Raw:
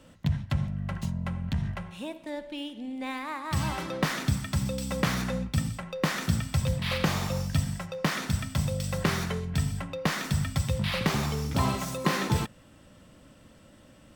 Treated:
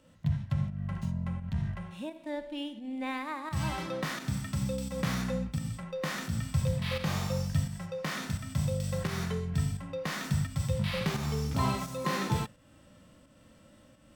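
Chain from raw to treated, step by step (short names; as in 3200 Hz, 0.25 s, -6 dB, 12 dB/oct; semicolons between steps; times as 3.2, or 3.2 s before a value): pump 86 bpm, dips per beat 1, -9 dB, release 0.202 s; harmonic-percussive split percussive -12 dB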